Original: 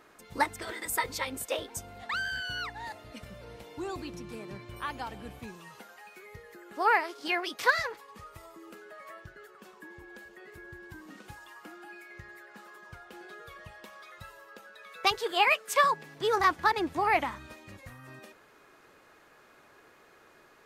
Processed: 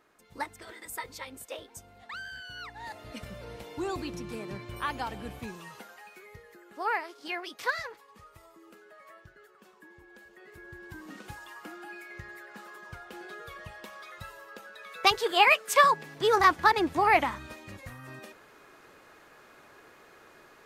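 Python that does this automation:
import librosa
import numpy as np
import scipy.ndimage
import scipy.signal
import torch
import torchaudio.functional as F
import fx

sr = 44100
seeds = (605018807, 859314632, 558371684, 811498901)

y = fx.gain(x, sr, db=fx.line((2.53, -8.0), (3.09, 3.5), (5.63, 3.5), (6.85, -5.5), (10.1, -5.5), (11.1, 3.5)))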